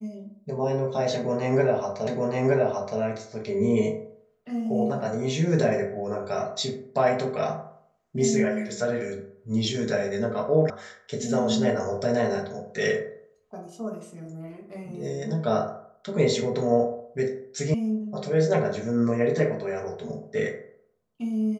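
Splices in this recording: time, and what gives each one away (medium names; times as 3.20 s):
2.07 s: repeat of the last 0.92 s
10.70 s: sound stops dead
17.74 s: sound stops dead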